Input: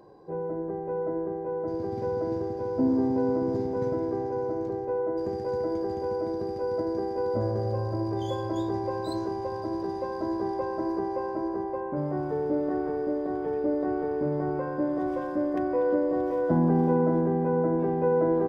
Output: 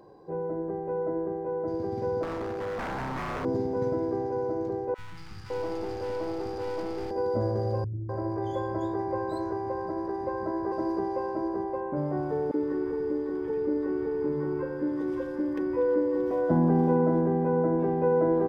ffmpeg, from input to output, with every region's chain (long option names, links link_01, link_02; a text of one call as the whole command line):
ffmpeg -i in.wav -filter_complex "[0:a]asettb=1/sr,asplit=3[link_01][link_02][link_03];[link_01]atrim=end=2.234[link_04];[link_02]atrim=start=2.23:end=3.45,asetpts=PTS-STARTPTS,afade=type=in:duration=0.004:curve=qsin,afade=type=out:start_time=1.216:duration=0.004:curve=qsin,acompressor=mode=upward:threshold=-27dB:ratio=2.5:attack=3.2:release=140:knee=2.83:detection=peak,aeval=exprs='0.0398*(abs(mod(val(0)/0.0398+3,4)-2)-1)':channel_layout=same[link_05];[link_03]atrim=start=3.446[link_06];[link_04][link_05]acrossfade=duration=0.004:curve1=hsin:curve2=qsin[link_07];[link_07][link_06]acrossfade=duration=0.004:curve1=qsin:curve2=hsin,asettb=1/sr,asplit=3[link_08][link_09][link_10];[link_08]atrim=end=4.944[link_11];[link_09]atrim=start=4.94:end=7.11,asetpts=PTS-STARTPTS,afade=type=in:duration=0.004:curve=qsin,afade=type=out:start_time=2.166:duration=0.004:curve=qsin,aeval=exprs='clip(val(0),-1,0.0168)':channel_layout=same,acrossover=split=190|1300[link_12][link_13][link_14];[link_12]adelay=40[link_15];[link_13]adelay=560[link_16];[link_15][link_16][link_14]amix=inputs=3:normalize=0,atrim=end_sample=95697,adynamicequalizer=threshold=0.00224:dfrequency=2000:dqfactor=0.7:tfrequency=2000:tqfactor=0.7:attack=5:release=100:ratio=0.375:range=2:mode=boostabove:tftype=highshelf[link_17];[link_10]atrim=start=7.106[link_18];[link_11][link_17]acrossfade=duration=0.004:curve1=hsin:curve2=qsin[link_19];[link_19][link_18]acrossfade=duration=0.004:curve1=qsin:curve2=hsin,asettb=1/sr,asplit=3[link_20][link_21][link_22];[link_20]atrim=end=7.844[link_23];[link_21]atrim=start=7.84:end=10.72,asetpts=PTS-STARTPTS,afade=type=in:duration=0.004:curve=qsin,afade=type=out:start_time=2.876:duration=0.004:curve=qsin,highshelf=frequency=2500:width_type=q:width=1.5:gain=-8,acrossover=split=230[link_24][link_25];[link_25]adelay=250[link_26];[link_24][link_26]amix=inputs=2:normalize=0,atrim=end_sample=127008[link_27];[link_22]atrim=start=10.716[link_28];[link_23][link_27]acrossfade=duration=0.004:curve1=hsin:curve2=qsin[link_29];[link_29][link_28]acrossfade=duration=0.004:curve1=qsin:curve2=hsin,asettb=1/sr,asplit=3[link_30][link_31][link_32];[link_30]atrim=end=12.514[link_33];[link_31]atrim=start=12.51:end=16.31,asetpts=PTS-STARTPTS,afade=type=in:duration=0.004:curve=qsin,afade=type=out:start_time=3.796:duration=0.004:curve=qsin,asuperstop=centerf=670:order=8:qfactor=2.4,equalizer=frequency=800:width_type=o:width=0.48:gain=9,acrossover=split=150|1000[link_34][link_35][link_36];[link_35]adelay=30[link_37];[link_34]adelay=110[link_38];[link_38][link_37][link_36]amix=inputs=3:normalize=0,atrim=end_sample=167580[link_39];[link_32]atrim=start=16.306[link_40];[link_33][link_39]acrossfade=duration=0.004:curve1=hsin:curve2=qsin[link_41];[link_41][link_40]acrossfade=duration=0.004:curve1=qsin:curve2=hsin" out.wav